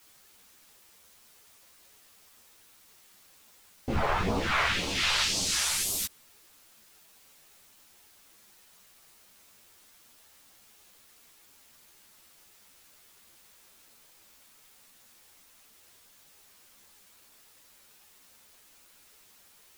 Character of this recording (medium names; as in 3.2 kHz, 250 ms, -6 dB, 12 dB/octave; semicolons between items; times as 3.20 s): phasing stages 2, 1.9 Hz, lowest notch 230–1700 Hz; a quantiser's noise floor 10-bit, dither triangular; a shimmering, thickened sound